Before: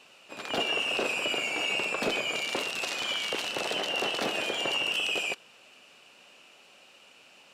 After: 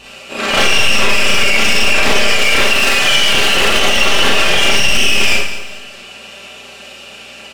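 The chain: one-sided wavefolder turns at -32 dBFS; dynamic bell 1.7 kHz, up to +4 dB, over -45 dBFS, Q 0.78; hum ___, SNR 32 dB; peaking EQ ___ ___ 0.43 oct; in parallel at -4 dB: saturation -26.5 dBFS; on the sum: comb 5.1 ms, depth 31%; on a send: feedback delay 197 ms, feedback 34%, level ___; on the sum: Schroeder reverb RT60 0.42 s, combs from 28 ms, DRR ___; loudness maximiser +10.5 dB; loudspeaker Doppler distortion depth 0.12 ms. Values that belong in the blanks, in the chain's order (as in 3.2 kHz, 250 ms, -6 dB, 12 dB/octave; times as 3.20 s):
60 Hz, 950 Hz, -4 dB, -14 dB, -5 dB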